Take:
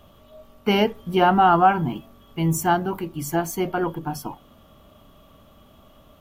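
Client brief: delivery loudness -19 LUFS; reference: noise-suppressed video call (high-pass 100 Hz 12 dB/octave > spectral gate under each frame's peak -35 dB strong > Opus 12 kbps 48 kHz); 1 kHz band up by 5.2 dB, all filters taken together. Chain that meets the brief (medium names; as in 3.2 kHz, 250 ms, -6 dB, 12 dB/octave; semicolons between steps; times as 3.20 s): high-pass 100 Hz 12 dB/octave; peaking EQ 1 kHz +7.5 dB; spectral gate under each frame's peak -35 dB strong; trim -0.5 dB; Opus 12 kbps 48 kHz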